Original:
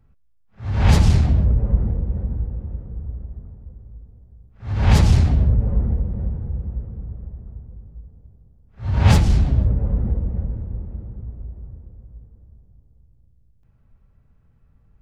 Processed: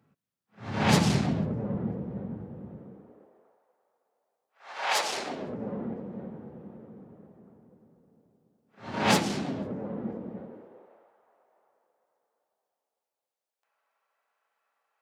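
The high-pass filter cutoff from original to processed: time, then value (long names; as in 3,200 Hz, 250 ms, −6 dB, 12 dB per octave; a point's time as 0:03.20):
high-pass filter 24 dB per octave
0:02.76 160 Hz
0:03.65 640 Hz
0:04.91 640 Hz
0:05.62 220 Hz
0:10.35 220 Hz
0:11.11 680 Hz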